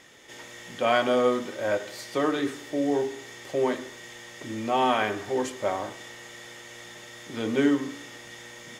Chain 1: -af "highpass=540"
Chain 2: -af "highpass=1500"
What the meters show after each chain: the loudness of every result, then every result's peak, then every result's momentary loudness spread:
−30.5, −37.5 LKFS; −10.0, −14.0 dBFS; 18, 13 LU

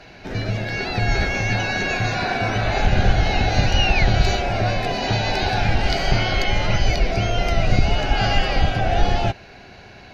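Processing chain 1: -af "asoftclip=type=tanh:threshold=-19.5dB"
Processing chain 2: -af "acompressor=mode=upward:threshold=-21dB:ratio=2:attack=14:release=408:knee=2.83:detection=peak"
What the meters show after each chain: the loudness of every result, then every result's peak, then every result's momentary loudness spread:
−25.5, −21.0 LKFS; −19.5, −3.5 dBFS; 3, 6 LU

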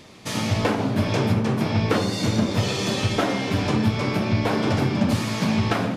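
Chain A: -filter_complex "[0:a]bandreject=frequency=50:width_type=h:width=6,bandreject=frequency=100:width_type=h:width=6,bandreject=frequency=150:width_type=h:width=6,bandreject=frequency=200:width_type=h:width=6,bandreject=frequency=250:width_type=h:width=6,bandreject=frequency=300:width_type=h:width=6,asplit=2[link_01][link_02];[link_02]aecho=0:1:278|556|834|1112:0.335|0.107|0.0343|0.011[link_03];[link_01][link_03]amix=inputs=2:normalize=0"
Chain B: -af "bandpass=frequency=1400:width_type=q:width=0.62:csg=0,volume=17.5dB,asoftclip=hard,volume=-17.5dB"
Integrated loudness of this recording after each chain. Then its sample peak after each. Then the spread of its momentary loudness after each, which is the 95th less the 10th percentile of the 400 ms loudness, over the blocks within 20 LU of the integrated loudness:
−23.0, −29.5 LKFS; −7.0, −17.5 dBFS; 1, 3 LU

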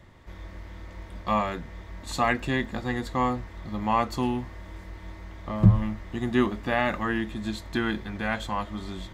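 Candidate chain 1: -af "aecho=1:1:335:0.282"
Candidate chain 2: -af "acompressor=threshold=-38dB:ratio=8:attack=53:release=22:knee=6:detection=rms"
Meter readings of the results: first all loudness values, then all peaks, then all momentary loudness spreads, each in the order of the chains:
−27.5, −38.0 LKFS; −4.5, −22.0 dBFS; 19, 8 LU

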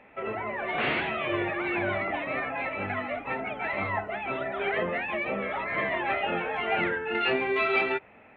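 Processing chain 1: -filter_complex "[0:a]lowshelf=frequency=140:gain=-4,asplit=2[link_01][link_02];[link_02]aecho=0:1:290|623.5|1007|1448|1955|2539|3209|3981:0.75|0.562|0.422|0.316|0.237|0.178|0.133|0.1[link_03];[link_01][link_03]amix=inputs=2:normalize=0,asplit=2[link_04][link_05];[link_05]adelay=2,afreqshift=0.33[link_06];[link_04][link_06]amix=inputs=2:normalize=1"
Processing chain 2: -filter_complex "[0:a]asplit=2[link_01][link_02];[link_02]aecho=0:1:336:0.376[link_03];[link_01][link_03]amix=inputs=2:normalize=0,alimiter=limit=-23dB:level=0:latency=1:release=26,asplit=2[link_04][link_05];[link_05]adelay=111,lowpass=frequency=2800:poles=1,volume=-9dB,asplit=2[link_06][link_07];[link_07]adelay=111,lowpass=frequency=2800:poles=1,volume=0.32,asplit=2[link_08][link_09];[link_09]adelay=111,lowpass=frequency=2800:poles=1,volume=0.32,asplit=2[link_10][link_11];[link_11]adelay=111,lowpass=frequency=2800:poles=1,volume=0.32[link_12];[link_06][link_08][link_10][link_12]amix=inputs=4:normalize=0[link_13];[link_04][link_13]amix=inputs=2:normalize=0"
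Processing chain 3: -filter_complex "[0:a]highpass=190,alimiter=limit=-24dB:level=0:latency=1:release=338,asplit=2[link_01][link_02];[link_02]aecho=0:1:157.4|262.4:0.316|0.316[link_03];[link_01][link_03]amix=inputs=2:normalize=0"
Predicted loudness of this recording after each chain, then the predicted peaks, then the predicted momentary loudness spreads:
−28.5, −30.5, −32.5 LKFS; −12.5, −20.5, −21.0 dBFS; 6, 2, 3 LU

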